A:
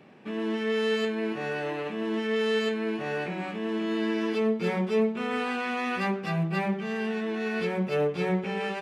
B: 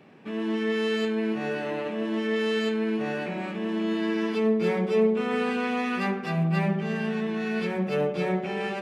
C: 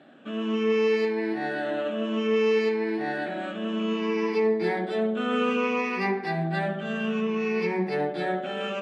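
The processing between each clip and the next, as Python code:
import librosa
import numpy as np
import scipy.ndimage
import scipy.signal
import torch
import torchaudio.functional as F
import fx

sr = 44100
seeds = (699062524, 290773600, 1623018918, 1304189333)

y1 = fx.echo_filtered(x, sr, ms=73, feedback_pct=84, hz=1400.0, wet_db=-8.5)
y2 = fx.spec_ripple(y1, sr, per_octave=0.82, drift_hz=-0.6, depth_db=13)
y2 = scipy.signal.sosfilt(scipy.signal.butter(2, 220.0, 'highpass', fs=sr, output='sos'), y2)
y2 = fx.air_absorb(y2, sr, metres=59.0)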